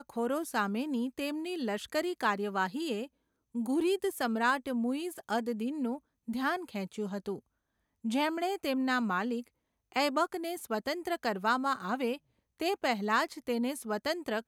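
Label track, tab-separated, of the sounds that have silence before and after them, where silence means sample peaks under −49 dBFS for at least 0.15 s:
3.550000	5.980000	sound
6.280000	7.390000	sound
8.040000	9.480000	sound
9.920000	12.170000	sound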